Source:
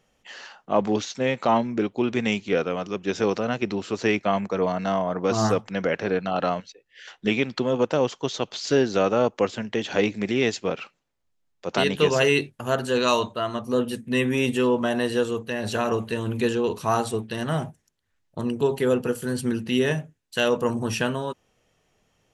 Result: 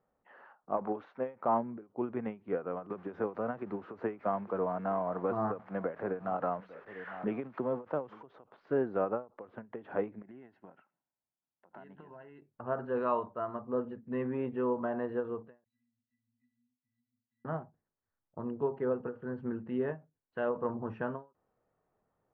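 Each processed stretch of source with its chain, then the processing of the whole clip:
0.77–1.36 s: overdrive pedal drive 12 dB, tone 5.5 kHz, clips at -8.5 dBFS + dynamic bell 1.8 kHz, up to -4 dB, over -36 dBFS, Q 1.4
2.90–8.23 s: zero-crossing glitches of -22 dBFS + delay 850 ms -22.5 dB + three bands compressed up and down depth 70%
10.22–12.42 s: comb of notches 1.2 kHz + compression 8:1, threshold -33 dBFS + peaking EQ 470 Hz -12.5 dB 0.52 oct
15.64–17.45 s: brick-wall FIR band-stop 270–1600 Hz + differentiator + pitch-class resonator B, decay 0.22 s
whole clip: low-pass 1.3 kHz 24 dB/octave; tilt EQ +2 dB/octave; endings held to a fixed fall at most 220 dB/s; trim -7 dB

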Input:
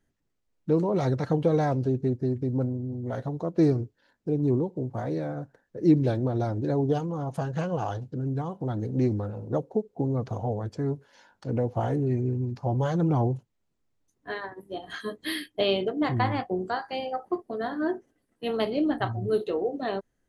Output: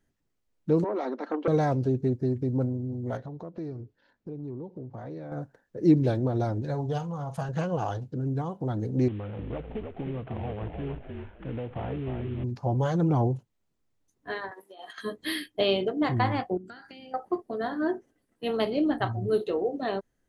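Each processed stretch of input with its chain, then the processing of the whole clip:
0.84–1.48 s: rippled Chebyshev high-pass 220 Hz, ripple 3 dB + distance through air 180 m + transformer saturation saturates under 680 Hz
3.17–5.32 s: compression 3:1, threshold -38 dBFS + distance through air 100 m
6.62–7.49 s: peaking EQ 330 Hz -14 dB 0.87 oct + doubling 47 ms -13 dB
9.08–12.44 s: CVSD coder 16 kbps + compression 3:1, threshold -32 dBFS + frequency-shifting echo 306 ms, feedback 43%, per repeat -48 Hz, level -5 dB
14.51–14.98 s: high-pass 670 Hz + compressor with a negative ratio -46 dBFS
16.57–17.14 s: high-order bell 630 Hz -12.5 dB 2.6 oct + compression 16:1, threshold -46 dBFS + small resonant body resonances 310/1400 Hz, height 14 dB, ringing for 25 ms
whole clip: none

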